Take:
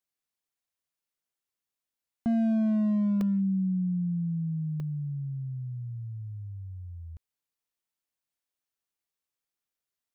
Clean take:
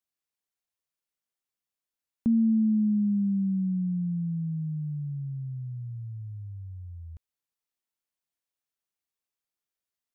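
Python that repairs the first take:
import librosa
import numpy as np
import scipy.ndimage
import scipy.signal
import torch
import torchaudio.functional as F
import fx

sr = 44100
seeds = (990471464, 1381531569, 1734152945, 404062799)

y = fx.fix_declip(x, sr, threshold_db=-23.0)
y = fx.fix_interpolate(y, sr, at_s=(3.21, 4.8), length_ms=1.7)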